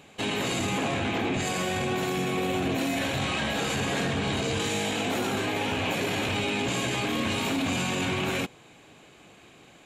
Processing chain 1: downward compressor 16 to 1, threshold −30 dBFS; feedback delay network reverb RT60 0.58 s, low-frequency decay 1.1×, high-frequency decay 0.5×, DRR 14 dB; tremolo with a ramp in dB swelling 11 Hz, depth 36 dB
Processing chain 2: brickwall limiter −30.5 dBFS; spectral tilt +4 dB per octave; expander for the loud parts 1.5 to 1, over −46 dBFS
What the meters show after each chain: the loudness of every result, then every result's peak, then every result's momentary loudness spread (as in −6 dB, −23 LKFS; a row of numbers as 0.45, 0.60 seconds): −42.5, −35.5 LKFS; −24.5, −22.5 dBFS; 14, 16 LU